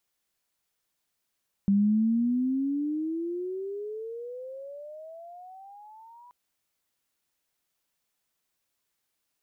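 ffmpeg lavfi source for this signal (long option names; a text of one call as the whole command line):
ffmpeg -f lavfi -i "aevalsrc='pow(10,(-18.5-30*t/4.63)/20)*sin(2*PI*196*4.63/(28*log(2)/12)*(exp(28*log(2)/12*t/4.63)-1))':duration=4.63:sample_rate=44100" out.wav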